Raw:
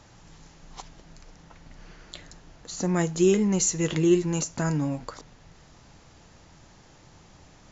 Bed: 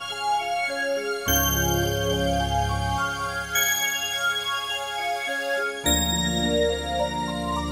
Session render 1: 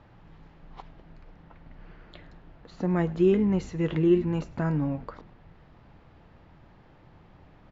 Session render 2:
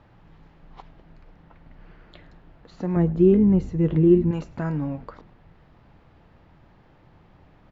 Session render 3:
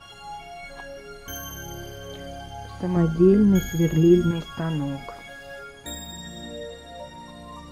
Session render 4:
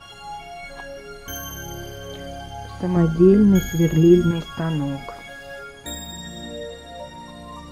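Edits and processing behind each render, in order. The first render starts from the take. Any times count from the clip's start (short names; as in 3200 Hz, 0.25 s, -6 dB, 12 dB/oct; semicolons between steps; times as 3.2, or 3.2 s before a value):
air absorption 430 m; frequency-shifting echo 0.104 s, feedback 56%, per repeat -120 Hz, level -21.5 dB
2.96–4.31 tilt shelf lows +8.5 dB, about 670 Hz
add bed -14 dB
gain +3 dB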